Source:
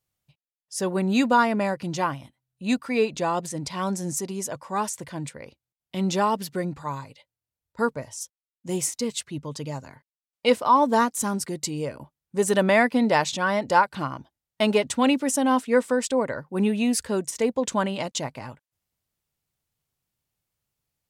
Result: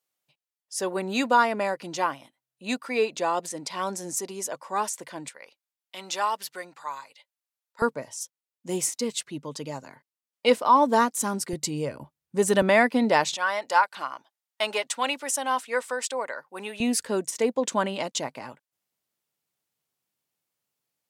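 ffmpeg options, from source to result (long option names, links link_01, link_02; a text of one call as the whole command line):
ffmpeg -i in.wav -af "asetnsamples=nb_out_samples=441:pad=0,asendcmd='5.28 highpass f 850;7.82 highpass f 210;11.53 highpass f 80;12.62 highpass f 200;13.34 highpass f 750;16.8 highpass f 230',highpass=350" out.wav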